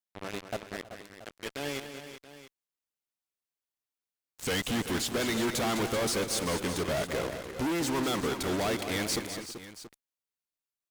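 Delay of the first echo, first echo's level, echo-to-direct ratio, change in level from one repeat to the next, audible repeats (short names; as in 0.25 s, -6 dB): 0.206 s, -9.5 dB, -6.5 dB, no steady repeat, 4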